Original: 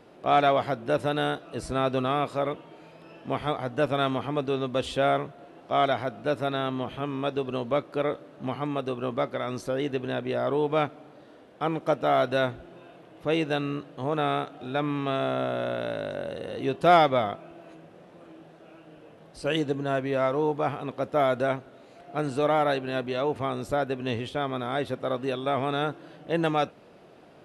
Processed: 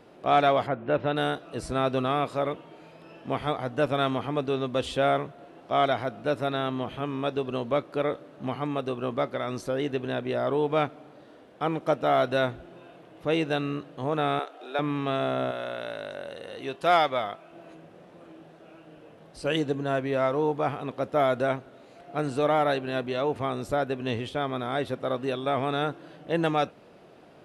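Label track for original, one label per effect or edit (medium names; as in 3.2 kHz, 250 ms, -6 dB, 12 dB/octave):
0.660000	1.150000	low-pass 2.3 kHz -> 3.9 kHz 24 dB/octave
14.390000	14.790000	high-pass 370 Hz 24 dB/octave
15.510000	17.530000	bass shelf 470 Hz -11 dB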